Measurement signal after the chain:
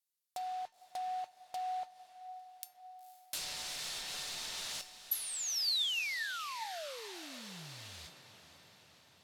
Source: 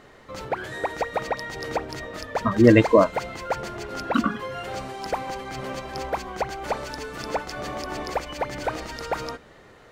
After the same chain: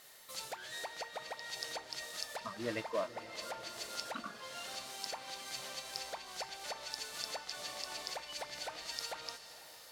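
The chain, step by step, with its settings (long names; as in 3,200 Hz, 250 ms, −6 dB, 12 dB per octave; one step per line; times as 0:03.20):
noise that follows the level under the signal 11 dB
treble cut that deepens with the level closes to 1,600 Hz, closed at −20.5 dBFS
graphic EQ with 15 bands 160 Hz +7 dB, 630 Hz +6 dB, 4,000 Hz +5 dB
in parallel at −1 dB: downward compressor, threshold −31 dBFS
on the sum: first-order pre-emphasis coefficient 0.97
tuned comb filter 900 Hz, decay 0.28 s, mix 70%
on a send: feedback delay with all-pass diffusion 490 ms, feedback 63%, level −14 dB
on the sum: level +6 dB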